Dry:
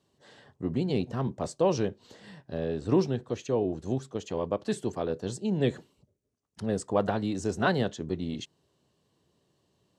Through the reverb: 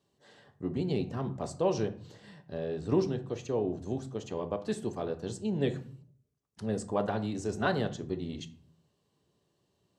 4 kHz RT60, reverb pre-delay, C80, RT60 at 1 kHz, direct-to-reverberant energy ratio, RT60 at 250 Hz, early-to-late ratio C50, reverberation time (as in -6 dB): 0.30 s, 3 ms, 18.5 dB, 0.50 s, 8.5 dB, 0.75 s, 14.5 dB, 0.55 s